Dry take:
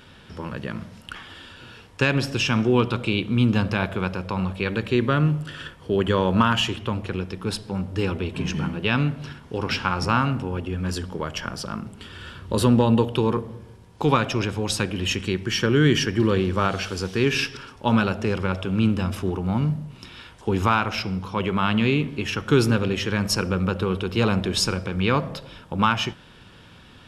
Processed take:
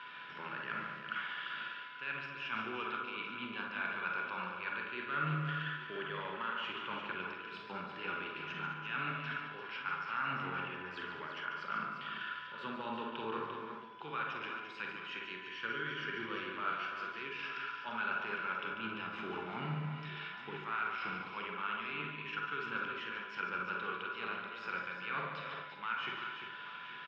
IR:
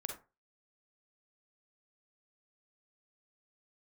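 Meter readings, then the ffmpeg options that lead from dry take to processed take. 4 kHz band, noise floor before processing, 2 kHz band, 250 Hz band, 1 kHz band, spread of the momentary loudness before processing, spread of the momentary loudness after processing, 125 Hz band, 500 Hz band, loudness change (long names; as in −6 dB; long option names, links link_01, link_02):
−16.5 dB, −48 dBFS, −8.5 dB, −24.5 dB, −11.0 dB, 15 LU, 6 LU, −24.0 dB, −21.0 dB, −16.0 dB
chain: -filter_complex "[0:a]aderivative,areverse,acompressor=threshold=-51dB:ratio=6,areverse,aeval=exprs='val(0)+0.000891*sin(2*PI*1000*n/s)':channel_layout=same,acrossover=split=1100[link_01][link_02];[link_01]acrusher=samples=12:mix=1:aa=0.000001:lfo=1:lforange=7.2:lforate=0.21[link_03];[link_03][link_02]amix=inputs=2:normalize=0,highpass=150,equalizer=frequency=150:width_type=q:width=4:gain=8,equalizer=frequency=520:width_type=q:width=4:gain=-4,equalizer=frequency=1400:width_type=q:width=4:gain=8,lowpass=frequency=2600:width=0.5412,lowpass=frequency=2600:width=1.3066,aecho=1:1:144|217|346|838:0.422|0.224|0.398|0.178[link_04];[1:a]atrim=start_sample=2205[link_05];[link_04][link_05]afir=irnorm=-1:irlink=0,volume=15dB"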